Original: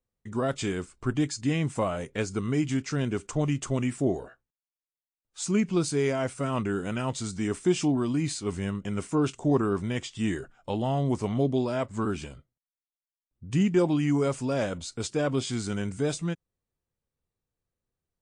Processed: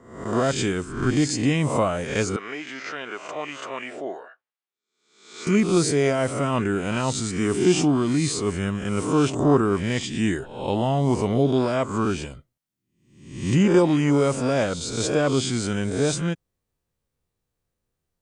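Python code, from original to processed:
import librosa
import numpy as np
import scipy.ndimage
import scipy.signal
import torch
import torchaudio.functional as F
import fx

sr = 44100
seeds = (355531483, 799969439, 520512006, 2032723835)

y = fx.spec_swells(x, sr, rise_s=0.67)
y = fx.bandpass_edges(y, sr, low_hz=740.0, high_hz=3000.0, at=(2.36, 5.47))
y = F.gain(torch.from_numpy(y), 4.5).numpy()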